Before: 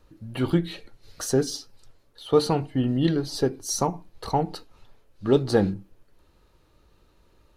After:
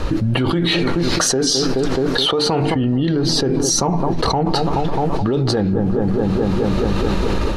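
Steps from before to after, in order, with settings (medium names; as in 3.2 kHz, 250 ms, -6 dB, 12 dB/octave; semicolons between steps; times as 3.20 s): feedback echo behind a low-pass 213 ms, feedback 66%, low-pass 1.3 kHz, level -20 dB; peak limiter -17 dBFS, peak gain reduction 10 dB; 0.50–2.76 s: bass shelf 170 Hz -10 dB; level rider gain up to 8.5 dB; distance through air 66 m; level flattener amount 100%; trim -3.5 dB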